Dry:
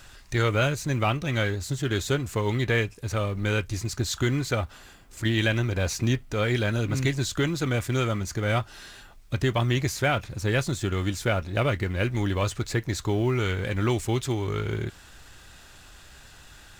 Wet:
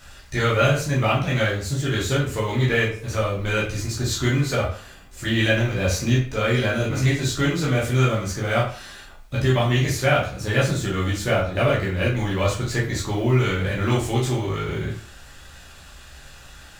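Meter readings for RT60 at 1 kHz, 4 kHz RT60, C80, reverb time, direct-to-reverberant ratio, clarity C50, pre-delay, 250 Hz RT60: 0.45 s, 0.35 s, 10.5 dB, 0.45 s, -6.5 dB, 6.0 dB, 9 ms, 0.45 s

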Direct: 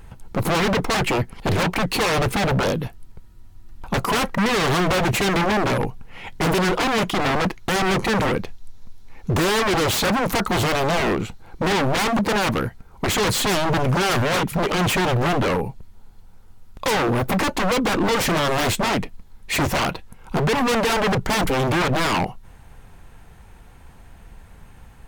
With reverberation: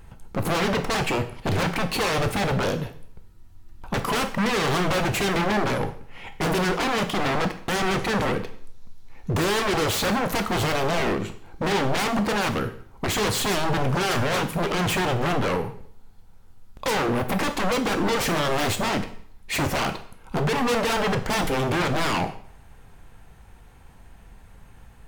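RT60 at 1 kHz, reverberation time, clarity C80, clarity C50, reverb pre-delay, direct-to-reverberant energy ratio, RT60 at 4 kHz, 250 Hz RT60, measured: 0.60 s, 0.60 s, 15.5 dB, 12.0 dB, 8 ms, 8.0 dB, 0.55 s, 0.65 s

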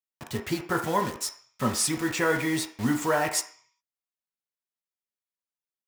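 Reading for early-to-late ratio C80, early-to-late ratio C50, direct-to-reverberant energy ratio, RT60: 13.0 dB, 9.0 dB, 2.0 dB, 0.50 s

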